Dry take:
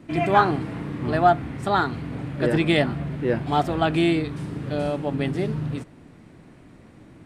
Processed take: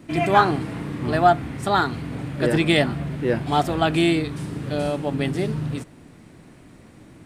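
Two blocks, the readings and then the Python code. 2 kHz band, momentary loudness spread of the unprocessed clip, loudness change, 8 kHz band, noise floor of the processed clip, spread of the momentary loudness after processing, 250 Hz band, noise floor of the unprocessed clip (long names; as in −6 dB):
+2.0 dB, 11 LU, +1.5 dB, can't be measured, −48 dBFS, 11 LU, +1.0 dB, −49 dBFS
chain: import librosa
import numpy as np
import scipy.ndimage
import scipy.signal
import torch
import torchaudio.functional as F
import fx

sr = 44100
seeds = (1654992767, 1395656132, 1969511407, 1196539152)

y = fx.high_shelf(x, sr, hz=4800.0, db=9.0)
y = F.gain(torch.from_numpy(y), 1.0).numpy()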